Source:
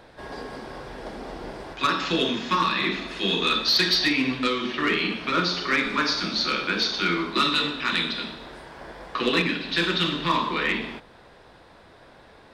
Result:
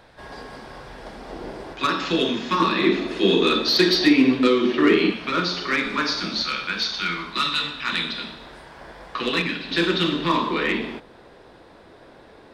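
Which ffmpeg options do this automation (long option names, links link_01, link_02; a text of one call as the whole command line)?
ffmpeg -i in.wav -af "asetnsamples=nb_out_samples=441:pad=0,asendcmd='1.3 equalizer g 3.5;2.6 equalizer g 12;5.1 equalizer g 1;6.42 equalizer g -10;7.87 equalizer g -2.5;9.71 equalizer g 6.5',equalizer=frequency=350:width_type=o:width=1.5:gain=-4.5" out.wav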